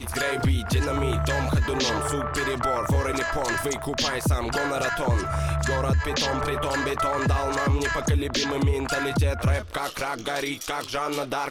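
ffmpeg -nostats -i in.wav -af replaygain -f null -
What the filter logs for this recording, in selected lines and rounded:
track_gain = +8.9 dB
track_peak = 0.134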